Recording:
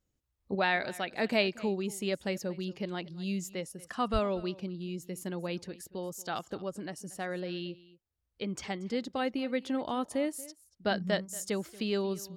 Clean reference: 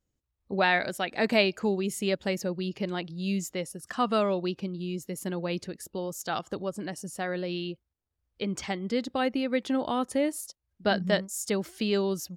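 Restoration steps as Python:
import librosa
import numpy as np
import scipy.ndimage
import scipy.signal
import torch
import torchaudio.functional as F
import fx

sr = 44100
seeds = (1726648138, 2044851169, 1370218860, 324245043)

y = fx.fix_deplosive(x, sr, at_s=(4.12,))
y = fx.fix_echo_inverse(y, sr, delay_ms=232, level_db=-20.0)
y = fx.gain(y, sr, db=fx.steps((0.0, 0.0), (0.55, 4.5)))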